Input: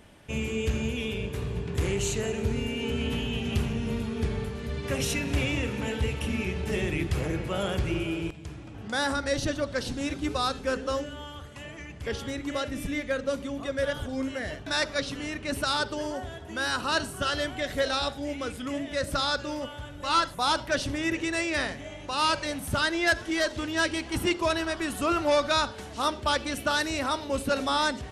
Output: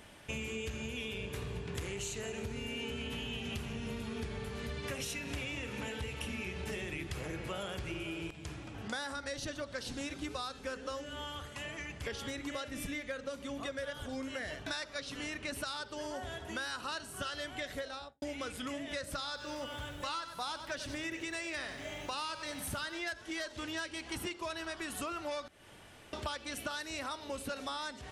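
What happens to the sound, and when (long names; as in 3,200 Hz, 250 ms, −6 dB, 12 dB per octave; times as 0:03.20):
0:17.62–0:18.22: fade out and dull
0:19.15–0:23.01: feedback echo at a low word length 95 ms, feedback 35%, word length 9 bits, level −12 dB
0:25.48–0:26.13: fill with room tone
whole clip: tilt shelving filter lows −3.5 dB, about 630 Hz; downward compressor 12 to 1, threshold −35 dBFS; level −1 dB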